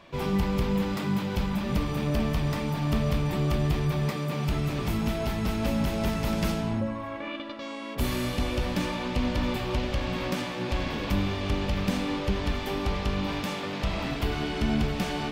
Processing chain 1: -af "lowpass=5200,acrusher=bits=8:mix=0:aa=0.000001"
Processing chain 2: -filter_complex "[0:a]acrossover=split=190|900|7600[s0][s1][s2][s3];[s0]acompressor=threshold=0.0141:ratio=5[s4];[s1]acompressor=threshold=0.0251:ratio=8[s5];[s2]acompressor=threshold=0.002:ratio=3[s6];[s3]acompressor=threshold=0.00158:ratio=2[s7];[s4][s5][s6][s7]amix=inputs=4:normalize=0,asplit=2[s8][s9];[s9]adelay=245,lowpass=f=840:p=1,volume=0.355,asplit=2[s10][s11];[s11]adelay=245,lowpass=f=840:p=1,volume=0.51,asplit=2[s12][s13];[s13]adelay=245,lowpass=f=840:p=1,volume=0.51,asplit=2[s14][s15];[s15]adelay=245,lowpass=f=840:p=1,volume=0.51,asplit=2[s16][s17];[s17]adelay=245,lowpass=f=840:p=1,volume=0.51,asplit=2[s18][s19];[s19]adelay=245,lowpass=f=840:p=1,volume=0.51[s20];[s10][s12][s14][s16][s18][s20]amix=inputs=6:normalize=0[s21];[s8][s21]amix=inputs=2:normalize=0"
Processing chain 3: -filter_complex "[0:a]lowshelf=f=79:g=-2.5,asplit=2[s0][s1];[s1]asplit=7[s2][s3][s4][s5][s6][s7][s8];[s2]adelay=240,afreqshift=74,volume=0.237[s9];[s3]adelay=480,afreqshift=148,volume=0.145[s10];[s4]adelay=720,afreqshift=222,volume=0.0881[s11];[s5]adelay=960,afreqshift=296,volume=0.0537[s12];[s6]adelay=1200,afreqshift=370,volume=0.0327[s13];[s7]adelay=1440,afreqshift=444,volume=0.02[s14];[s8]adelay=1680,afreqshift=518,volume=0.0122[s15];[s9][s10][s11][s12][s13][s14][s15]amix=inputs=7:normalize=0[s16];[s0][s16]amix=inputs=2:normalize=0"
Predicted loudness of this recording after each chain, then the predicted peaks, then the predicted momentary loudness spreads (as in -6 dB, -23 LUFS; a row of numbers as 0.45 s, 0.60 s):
-29.0 LUFS, -34.0 LUFS, -29.0 LUFS; -15.5 dBFS, -19.5 dBFS, -14.5 dBFS; 4 LU, 3 LU, 4 LU